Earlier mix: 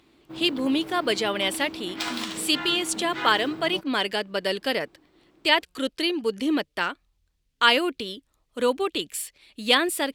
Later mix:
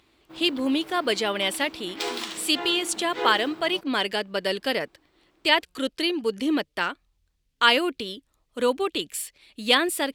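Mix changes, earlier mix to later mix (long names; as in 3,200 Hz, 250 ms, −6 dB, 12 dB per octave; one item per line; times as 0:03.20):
first sound: add low-shelf EQ 390 Hz −11 dB
second sound: remove high-pass with resonance 1,300 Hz, resonance Q 1.8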